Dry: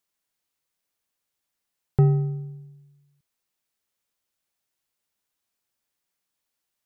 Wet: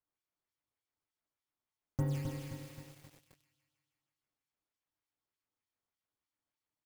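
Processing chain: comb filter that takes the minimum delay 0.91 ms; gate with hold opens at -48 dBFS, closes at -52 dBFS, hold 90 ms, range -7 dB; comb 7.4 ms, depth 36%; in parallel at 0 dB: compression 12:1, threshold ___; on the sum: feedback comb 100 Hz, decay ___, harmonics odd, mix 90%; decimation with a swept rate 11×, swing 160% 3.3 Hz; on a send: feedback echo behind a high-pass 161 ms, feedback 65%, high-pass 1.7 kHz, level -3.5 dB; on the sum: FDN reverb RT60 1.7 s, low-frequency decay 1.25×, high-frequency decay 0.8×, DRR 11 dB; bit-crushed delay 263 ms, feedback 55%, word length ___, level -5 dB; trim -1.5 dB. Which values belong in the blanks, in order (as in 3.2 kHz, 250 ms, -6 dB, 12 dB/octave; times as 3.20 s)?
-29 dBFS, 0.48 s, 9-bit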